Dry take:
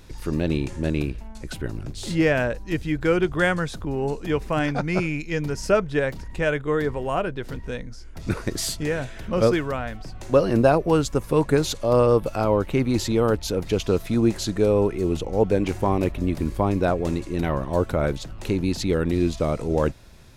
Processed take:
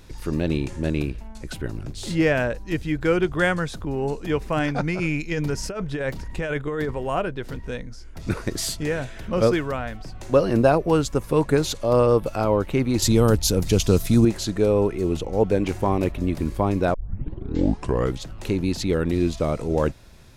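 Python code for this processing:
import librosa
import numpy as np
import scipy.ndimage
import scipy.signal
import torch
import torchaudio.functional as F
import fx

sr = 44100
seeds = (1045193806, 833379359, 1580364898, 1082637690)

y = fx.over_compress(x, sr, threshold_db=-25.0, ratio=-1.0, at=(4.8, 6.91))
y = fx.bass_treble(y, sr, bass_db=8, treble_db=12, at=(13.02, 14.25))
y = fx.edit(y, sr, fx.tape_start(start_s=16.94, length_s=1.3), tone=tone)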